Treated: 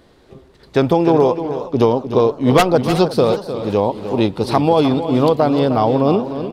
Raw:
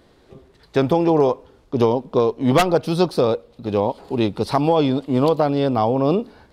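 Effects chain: delay 305 ms -10.5 dB; modulated delay 366 ms, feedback 51%, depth 183 cents, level -16 dB; trim +3 dB

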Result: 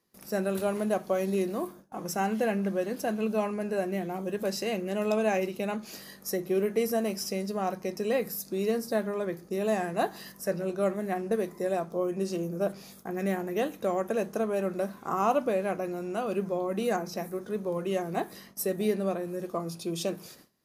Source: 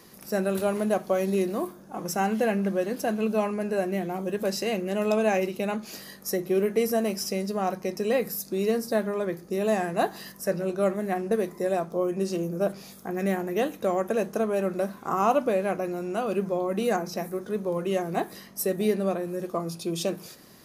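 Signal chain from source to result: gate with hold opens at -36 dBFS; trim -3 dB

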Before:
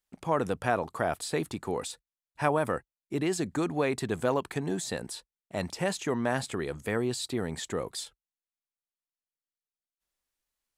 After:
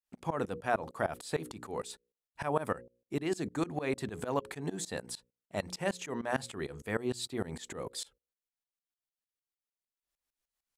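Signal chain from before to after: hum notches 60/120/180/240/300/360/420/480/540 Hz; tremolo saw up 6.6 Hz, depth 95%

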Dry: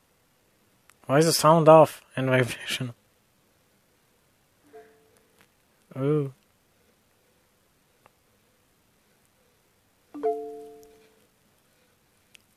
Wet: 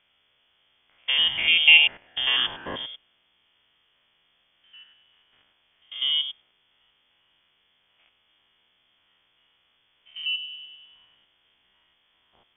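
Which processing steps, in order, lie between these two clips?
spectrogram pixelated in time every 100 ms; frequency inversion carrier 3.4 kHz

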